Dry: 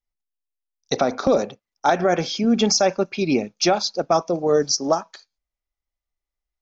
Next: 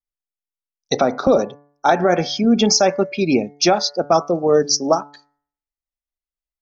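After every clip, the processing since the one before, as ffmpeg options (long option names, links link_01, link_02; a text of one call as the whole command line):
ffmpeg -i in.wav -af "afftdn=noise_reduction=13:noise_floor=-35,bandreject=frequency=144.3:width_type=h:width=4,bandreject=frequency=288.6:width_type=h:width=4,bandreject=frequency=432.9:width_type=h:width=4,bandreject=frequency=577.2:width_type=h:width=4,bandreject=frequency=721.5:width_type=h:width=4,bandreject=frequency=865.8:width_type=h:width=4,bandreject=frequency=1010.1:width_type=h:width=4,bandreject=frequency=1154.4:width_type=h:width=4,bandreject=frequency=1298.7:width_type=h:width=4,bandreject=frequency=1443:width_type=h:width=4,bandreject=frequency=1587.3:width_type=h:width=4,bandreject=frequency=1731.6:width_type=h:width=4,bandreject=frequency=1875.9:width_type=h:width=4,bandreject=frequency=2020.2:width_type=h:width=4,bandreject=frequency=2164.5:width_type=h:width=4,volume=3.5dB" out.wav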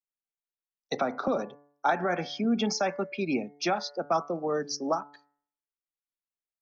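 ffmpeg -i in.wav -filter_complex "[0:a]acrossover=split=180 3000:gain=0.178 1 0.251[link_01][link_02][link_03];[link_01][link_02][link_03]amix=inputs=3:normalize=0,acrossover=split=250|810[link_04][link_05][link_06];[link_05]acompressor=threshold=-27dB:ratio=6[link_07];[link_04][link_07][link_06]amix=inputs=3:normalize=0,volume=-6.5dB" out.wav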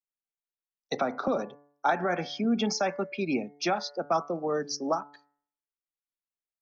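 ffmpeg -i in.wav -af anull out.wav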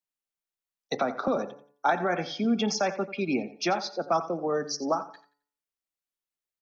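ffmpeg -i in.wav -af "aecho=1:1:88|176|264:0.178|0.048|0.013,volume=1dB" out.wav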